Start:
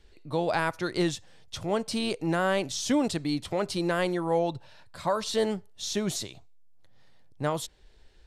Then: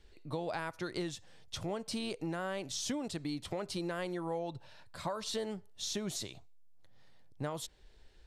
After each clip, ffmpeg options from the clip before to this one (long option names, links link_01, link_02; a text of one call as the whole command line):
ffmpeg -i in.wav -af "acompressor=threshold=-31dB:ratio=6,volume=-3dB" out.wav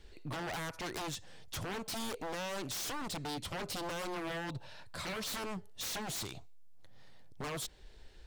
ffmpeg -i in.wav -af "aeval=exprs='0.0112*(abs(mod(val(0)/0.0112+3,4)-2)-1)':channel_layout=same,volume=5dB" out.wav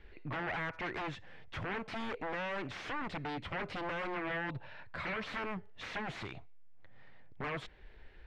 ffmpeg -i in.wav -af "lowpass=frequency=2100:width_type=q:width=1.9" out.wav